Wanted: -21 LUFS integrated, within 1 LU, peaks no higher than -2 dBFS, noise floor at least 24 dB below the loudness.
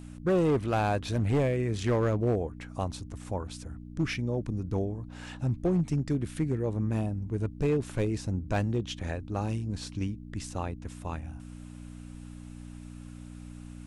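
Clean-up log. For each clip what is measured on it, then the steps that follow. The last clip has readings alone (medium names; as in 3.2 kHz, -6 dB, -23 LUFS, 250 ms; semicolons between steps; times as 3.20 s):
clipped samples 1.1%; clipping level -20.5 dBFS; hum 60 Hz; highest harmonic 300 Hz; hum level -43 dBFS; loudness -31.0 LUFS; peak level -20.5 dBFS; loudness target -21.0 LUFS
-> clip repair -20.5 dBFS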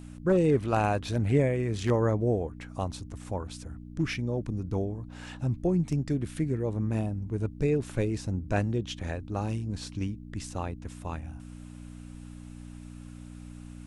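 clipped samples 0.0%; hum 60 Hz; highest harmonic 300 Hz; hum level -41 dBFS
-> de-hum 60 Hz, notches 5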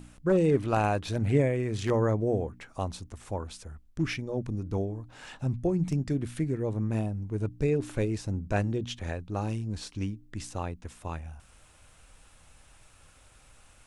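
hum not found; loudness -30.5 LUFS; peak level -12.0 dBFS; loudness target -21.0 LUFS
-> trim +9.5 dB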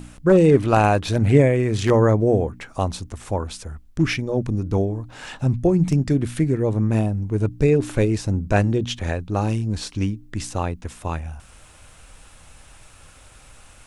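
loudness -21.0 LUFS; peak level -2.5 dBFS; noise floor -48 dBFS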